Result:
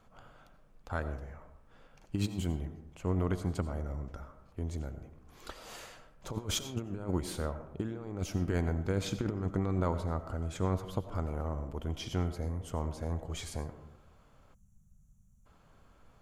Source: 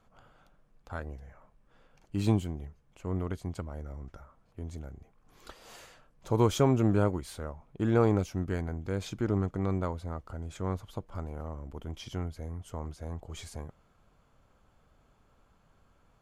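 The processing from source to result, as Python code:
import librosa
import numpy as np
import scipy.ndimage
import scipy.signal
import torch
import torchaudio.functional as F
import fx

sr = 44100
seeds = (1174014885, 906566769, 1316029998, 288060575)

y = fx.over_compress(x, sr, threshold_db=-31.0, ratio=-0.5)
y = fx.rev_freeverb(y, sr, rt60_s=0.87, hf_ratio=0.35, predelay_ms=50, drr_db=10.5)
y = fx.spec_box(y, sr, start_s=14.54, length_s=0.92, low_hz=220.0, high_hz=5600.0, gain_db=-28)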